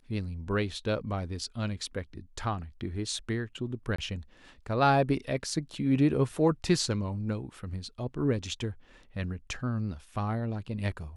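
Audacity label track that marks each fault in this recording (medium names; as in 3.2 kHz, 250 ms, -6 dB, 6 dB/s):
3.960000	3.980000	dropout 24 ms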